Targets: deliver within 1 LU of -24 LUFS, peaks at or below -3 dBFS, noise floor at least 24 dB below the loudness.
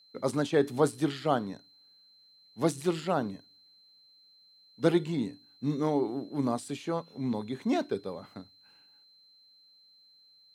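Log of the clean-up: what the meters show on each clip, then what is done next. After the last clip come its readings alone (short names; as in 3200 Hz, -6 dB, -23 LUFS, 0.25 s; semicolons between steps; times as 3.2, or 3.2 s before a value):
steady tone 4100 Hz; tone level -58 dBFS; loudness -31.0 LUFS; peak -10.5 dBFS; loudness target -24.0 LUFS
-> notch 4100 Hz, Q 30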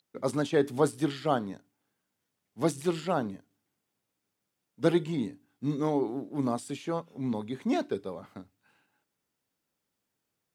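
steady tone none; loudness -30.5 LUFS; peak -10.5 dBFS; loudness target -24.0 LUFS
-> gain +6.5 dB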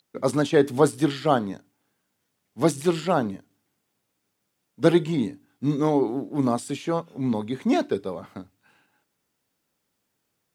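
loudness -24.5 LUFS; peak -4.0 dBFS; noise floor -77 dBFS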